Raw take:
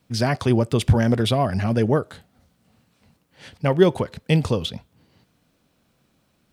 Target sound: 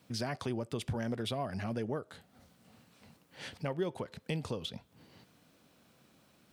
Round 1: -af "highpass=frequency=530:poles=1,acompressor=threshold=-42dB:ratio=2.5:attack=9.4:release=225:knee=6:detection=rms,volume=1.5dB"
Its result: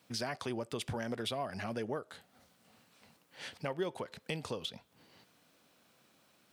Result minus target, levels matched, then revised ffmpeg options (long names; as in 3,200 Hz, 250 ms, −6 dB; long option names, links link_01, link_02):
125 Hz band −4.5 dB
-af "highpass=frequency=150:poles=1,acompressor=threshold=-42dB:ratio=2.5:attack=9.4:release=225:knee=6:detection=rms,volume=1.5dB"